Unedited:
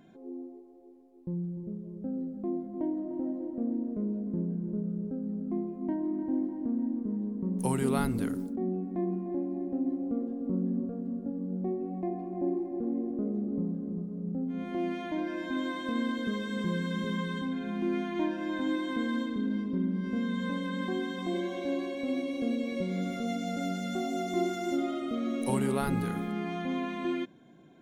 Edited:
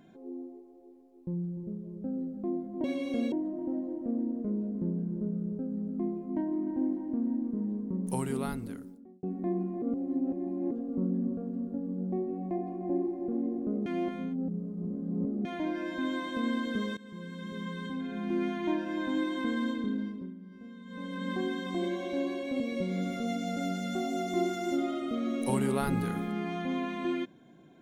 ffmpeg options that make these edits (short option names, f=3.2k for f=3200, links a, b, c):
-filter_complex "[0:a]asplit=12[a][b][c][d][e][f][g][h][i][j][k][l];[a]atrim=end=2.842[m];[b]atrim=start=22.118:end=22.602[n];[c]atrim=start=2.838:end=8.75,asetpts=PTS-STARTPTS,afade=t=out:st=4.422:d=1.49[o];[d]atrim=start=8.75:end=9.342,asetpts=PTS-STARTPTS,afade=t=in:d=0.004:c=hsin[p];[e]atrim=start=9.338:end=10.232,asetpts=PTS-STARTPTS,areverse[q];[f]atrim=start=10.228:end=13.382[r];[g]atrim=start=13.378:end=14.972,asetpts=PTS-STARTPTS,areverse[s];[h]atrim=start=14.968:end=16.49,asetpts=PTS-STARTPTS,afade=t=out:st=1.518:d=0.004:c=hsin:silence=0.112202[t];[i]atrim=start=16.49:end=19.86,asetpts=PTS-STARTPTS,afade=t=in:d=1.44:silence=0.112202,afade=t=out:st=2.88:d=0.49:silence=0.158489[u];[j]atrim=start=19.86:end=20.37,asetpts=PTS-STARTPTS,volume=-16dB[v];[k]atrim=start=20.37:end=22.122,asetpts=PTS-STARTPTS,afade=t=in:d=0.49:silence=0.158489[w];[l]atrim=start=22.598[x];[m][n]acrossfade=d=0.004:c1=hsin:c2=hsin[y];[o][p]concat=n=2:v=0:a=1[z];[y][z]acrossfade=d=0.004:c1=hsin:c2=hsin[aa];[aa][q]acrossfade=d=0.004:c1=hsin:c2=hsin[ab];[ab][r]acrossfade=d=0.004:c1=hsin:c2=hsin[ac];[ac][s]acrossfade=d=0.004:c1=hsin:c2=hsin[ad];[t][u][v][w]concat=n=4:v=0:a=1[ae];[ad][ae]acrossfade=d=0.004:c1=hsin:c2=hsin[af];[af][x]acrossfade=d=0.004:c1=hsin:c2=hsin"